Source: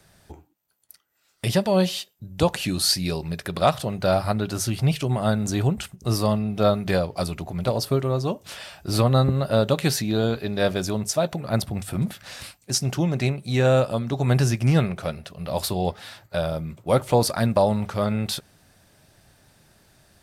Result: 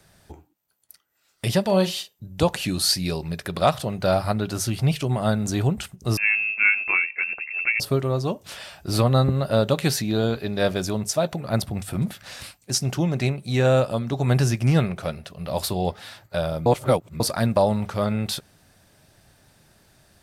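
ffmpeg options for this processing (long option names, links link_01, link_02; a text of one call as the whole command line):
ffmpeg -i in.wav -filter_complex "[0:a]asettb=1/sr,asplit=3[link_01][link_02][link_03];[link_01]atrim=end=1.634[link_04];[link_02]atrim=start=1.63:end=2.27,asetpts=PTS-STARTPTS,afade=type=in:duration=0.004:curve=qsin,afade=type=out:start_time=0.636:duration=0.004:curve=qsin,asplit=2[link_05][link_06];[link_06]adelay=41,volume=-10dB[link_07];[link_05][link_07]amix=inputs=2:normalize=0,atrim=end_sample=28224[link_08];[link_03]atrim=start=2.266[link_09];[link_04][link_08]acrossfade=duration=0.004:curve1=hsin:curve2=qsin[link_10];[link_10][link_09]acrossfade=duration=0.004:curve1=qsin:curve2=hsin,asettb=1/sr,asplit=3[link_11][link_12][link_13];[link_11]atrim=end=6.174[link_14];[link_12]atrim=start=6.17:end=7.8,asetpts=PTS-STARTPTS,afade=type=in:duration=0.004:curve=qsin,afade=type=out:start_time=1.626:duration=0.004:curve=qsin,lowpass=frequency=2400:width_type=q:width=0.5098,lowpass=frequency=2400:width_type=q:width=0.6013,lowpass=frequency=2400:width_type=q:width=0.9,lowpass=frequency=2400:width_type=q:width=2.563,afreqshift=-2800[link_15];[link_13]atrim=start=7.796[link_16];[link_14][link_15]acrossfade=duration=0.004:curve1=hsin:curve2=qsin[link_17];[link_17][link_16]acrossfade=duration=0.004:curve1=qsin:curve2=hsin,asplit=3[link_18][link_19][link_20];[link_18]atrim=end=16.662[link_21];[link_19]atrim=start=16.658:end=17.202,asetpts=PTS-STARTPTS,areverse[link_22];[link_20]atrim=start=17.198[link_23];[link_21][link_22]acrossfade=duration=0.004:curve1=hsin:curve2=hsin[link_24];[link_24][link_23]acrossfade=duration=0.004:curve1=hsin:curve2=hsin" out.wav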